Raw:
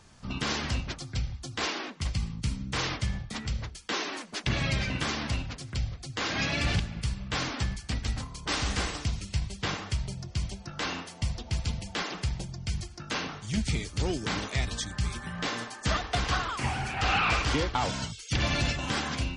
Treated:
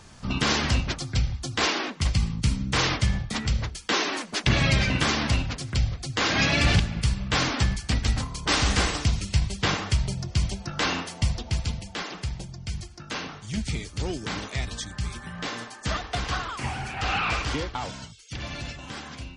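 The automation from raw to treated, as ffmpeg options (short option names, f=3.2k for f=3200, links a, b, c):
-af "volume=7dB,afade=t=out:st=11.13:d=0.76:silence=0.421697,afade=t=out:st=17.42:d=0.68:silence=0.446684"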